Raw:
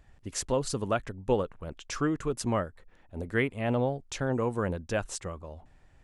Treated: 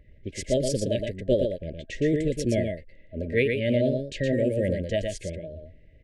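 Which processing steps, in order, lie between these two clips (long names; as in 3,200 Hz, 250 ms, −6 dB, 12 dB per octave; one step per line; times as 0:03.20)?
low-pass that shuts in the quiet parts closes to 1,700 Hz, open at −22.5 dBFS
brick-wall band-stop 650–1,600 Hz
formants moved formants +2 semitones
single-tap delay 117 ms −5 dB
level +4.5 dB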